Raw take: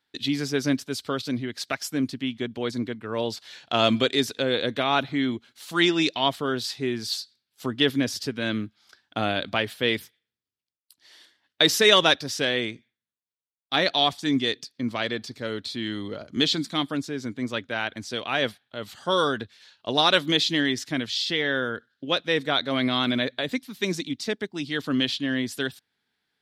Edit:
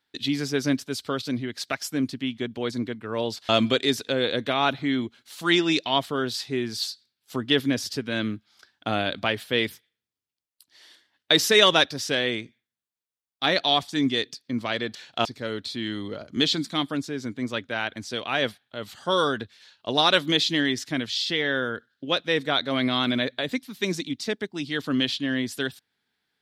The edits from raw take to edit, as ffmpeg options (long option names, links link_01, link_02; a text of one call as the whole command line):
ffmpeg -i in.wav -filter_complex "[0:a]asplit=4[link_01][link_02][link_03][link_04];[link_01]atrim=end=3.492[link_05];[link_02]atrim=start=3.788:end=15.252[link_06];[link_03]atrim=start=3.488:end=3.792[link_07];[link_04]atrim=start=15.248[link_08];[link_05][link_06]acrossfade=duration=0.004:curve1=hsin:curve2=hsin[link_09];[link_09][link_07]acrossfade=duration=0.004:curve1=hsin:curve2=hsin[link_10];[link_10][link_08]acrossfade=duration=0.004:curve1=hsin:curve2=hsin" out.wav